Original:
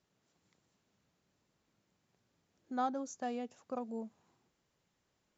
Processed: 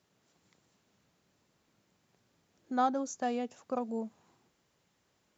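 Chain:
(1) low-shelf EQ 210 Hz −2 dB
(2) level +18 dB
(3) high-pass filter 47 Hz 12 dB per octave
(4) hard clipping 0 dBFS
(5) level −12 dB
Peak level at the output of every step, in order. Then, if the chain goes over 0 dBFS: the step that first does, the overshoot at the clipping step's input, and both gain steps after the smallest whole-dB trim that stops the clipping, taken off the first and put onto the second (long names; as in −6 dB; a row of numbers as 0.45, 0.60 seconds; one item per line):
−23.0, −5.0, −4.5, −4.5, −16.5 dBFS
no step passes full scale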